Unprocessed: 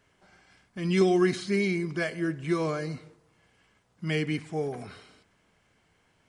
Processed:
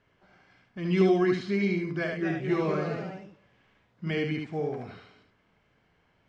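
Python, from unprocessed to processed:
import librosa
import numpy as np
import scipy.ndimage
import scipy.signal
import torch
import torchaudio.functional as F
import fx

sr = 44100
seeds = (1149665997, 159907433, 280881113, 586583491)

y = fx.echo_pitch(x, sr, ms=264, semitones=2, count=2, db_per_echo=-6.0, at=(1.86, 4.11))
y = fx.air_absorb(y, sr, metres=170.0)
y = y + 10.0 ** (-4.0 / 20.0) * np.pad(y, (int(74 * sr / 1000.0), 0))[:len(y)]
y = F.gain(torch.from_numpy(y), -1.0).numpy()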